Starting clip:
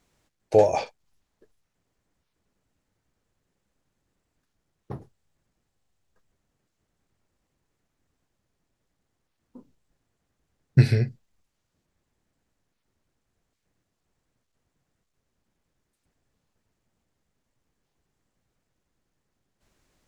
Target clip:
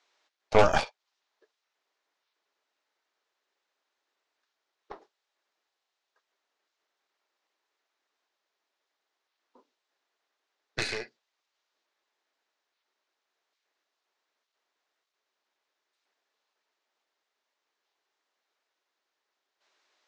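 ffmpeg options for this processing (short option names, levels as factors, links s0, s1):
-af "highpass=f=470:w=0.5412,highpass=f=470:w=1.3066,equalizer=f=510:t=q:w=4:g=-7,equalizer=f=720:t=q:w=4:g=-3,equalizer=f=3800:t=q:w=4:g=3,lowpass=f=5900:w=0.5412,lowpass=f=5900:w=1.3066,aeval=exprs='0.282*(cos(1*acos(clip(val(0)/0.282,-1,1)))-cos(1*PI/2))+0.0794*(cos(6*acos(clip(val(0)/0.282,-1,1)))-cos(6*PI/2))':c=same,volume=1.19"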